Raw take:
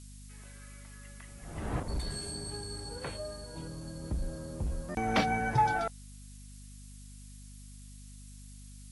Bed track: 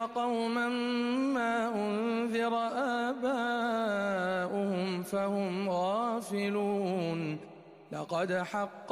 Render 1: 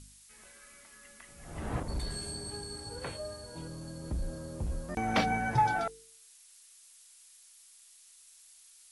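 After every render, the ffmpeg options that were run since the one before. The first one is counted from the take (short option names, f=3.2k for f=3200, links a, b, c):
-af "bandreject=f=50:t=h:w=4,bandreject=f=100:t=h:w=4,bandreject=f=150:t=h:w=4,bandreject=f=200:t=h:w=4,bandreject=f=250:t=h:w=4,bandreject=f=300:t=h:w=4,bandreject=f=350:t=h:w=4,bandreject=f=400:t=h:w=4,bandreject=f=450:t=h:w=4"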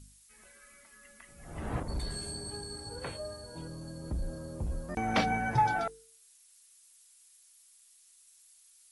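-af "afftdn=nr=6:nf=-58"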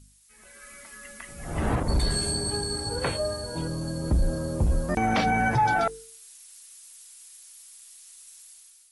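-af "alimiter=level_in=3dB:limit=-24dB:level=0:latency=1:release=91,volume=-3dB,dynaudnorm=f=220:g=5:m=12dB"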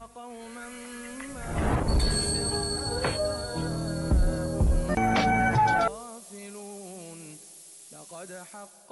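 -filter_complex "[1:a]volume=-11.5dB[a];[0:a][a]amix=inputs=2:normalize=0"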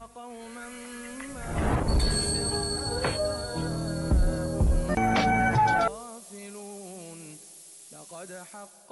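-af anull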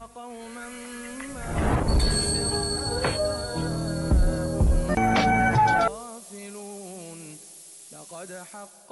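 -af "volume=2.5dB"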